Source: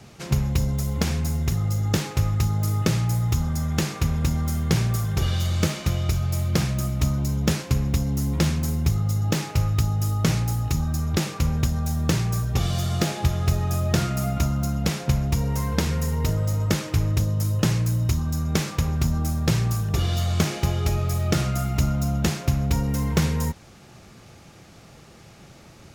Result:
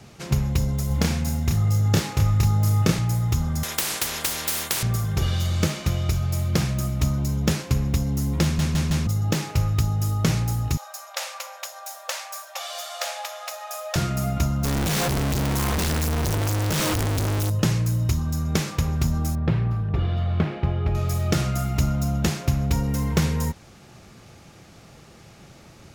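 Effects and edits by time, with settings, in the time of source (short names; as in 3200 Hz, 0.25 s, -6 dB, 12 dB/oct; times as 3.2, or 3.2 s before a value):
0.87–2.99 doubler 30 ms -3.5 dB
3.63–4.83 spectral compressor 10:1
8.43 stutter in place 0.16 s, 4 plays
10.77–13.96 brick-wall FIR high-pass 510 Hz
14.64–17.5 infinite clipping
19.35–20.95 air absorption 460 m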